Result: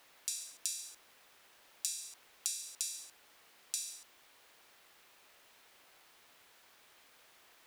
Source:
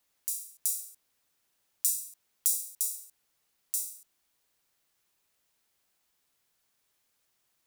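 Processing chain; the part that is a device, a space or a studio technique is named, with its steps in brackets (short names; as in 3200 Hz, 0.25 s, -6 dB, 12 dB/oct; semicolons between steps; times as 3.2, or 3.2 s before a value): baby monitor (BPF 370–3400 Hz; compressor 6:1, threshold -52 dBFS, peak gain reduction 11.5 dB; white noise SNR 21 dB); gain +18 dB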